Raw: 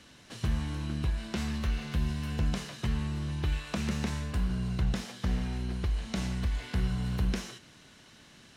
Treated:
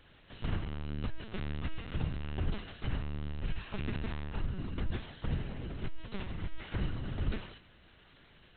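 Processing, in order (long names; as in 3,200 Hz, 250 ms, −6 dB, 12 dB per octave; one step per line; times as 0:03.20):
mains-hum notches 60/120/180 Hz
tuned comb filter 280 Hz, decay 1.2 s, mix 50%
linear-prediction vocoder at 8 kHz pitch kept
level +2.5 dB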